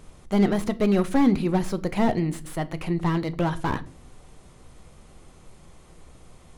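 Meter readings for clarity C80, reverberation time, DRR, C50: 25.0 dB, 0.40 s, 11.5 dB, 20.0 dB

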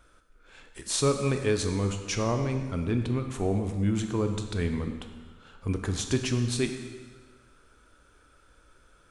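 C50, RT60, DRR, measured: 7.0 dB, 1.5 s, 5.5 dB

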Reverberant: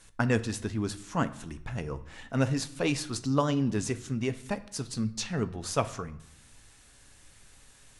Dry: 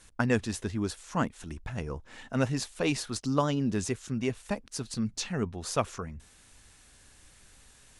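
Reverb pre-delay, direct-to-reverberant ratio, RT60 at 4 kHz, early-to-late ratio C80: 6 ms, 10.0 dB, 0.55 s, 19.0 dB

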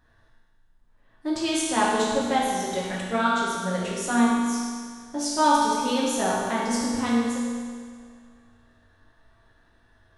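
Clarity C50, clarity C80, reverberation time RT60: −1.5 dB, 0.5 dB, 1.9 s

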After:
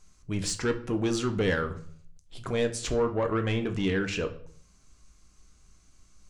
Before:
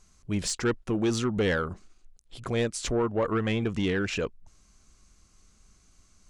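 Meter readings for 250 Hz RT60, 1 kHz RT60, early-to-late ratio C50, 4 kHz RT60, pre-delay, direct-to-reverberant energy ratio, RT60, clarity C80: 0.70 s, 0.45 s, 14.0 dB, 0.40 s, 3 ms, 6.5 dB, 0.55 s, 17.0 dB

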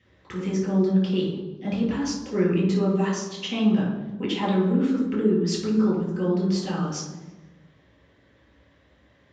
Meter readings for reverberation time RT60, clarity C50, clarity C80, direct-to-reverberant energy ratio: 1.2 s, 3.0 dB, 6.5 dB, −4.0 dB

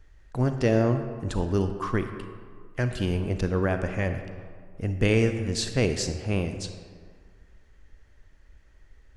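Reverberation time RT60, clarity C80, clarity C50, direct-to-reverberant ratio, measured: 1.9 s, 9.5 dB, 8.0 dB, 7.5 dB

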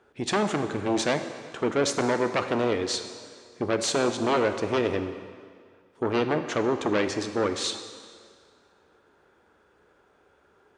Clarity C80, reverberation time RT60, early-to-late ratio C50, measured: 10.0 dB, 2.0 s, 9.0 dB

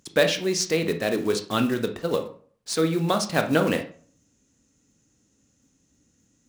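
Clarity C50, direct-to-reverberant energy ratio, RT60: 10.5 dB, 6.0 dB, 0.50 s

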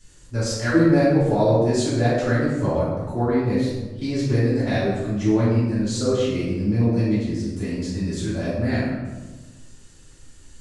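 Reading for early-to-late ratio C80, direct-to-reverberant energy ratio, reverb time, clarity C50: 2.5 dB, −11.0 dB, 1.3 s, −1.0 dB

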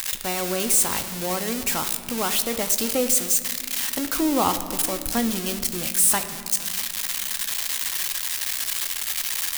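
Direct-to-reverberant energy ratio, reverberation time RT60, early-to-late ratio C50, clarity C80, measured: 7.5 dB, 2.3 s, 11.0 dB, 12.0 dB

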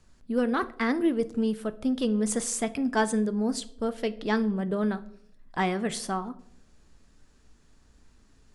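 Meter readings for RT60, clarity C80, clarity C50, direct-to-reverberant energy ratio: 0.70 s, 21.5 dB, 18.0 dB, 11.5 dB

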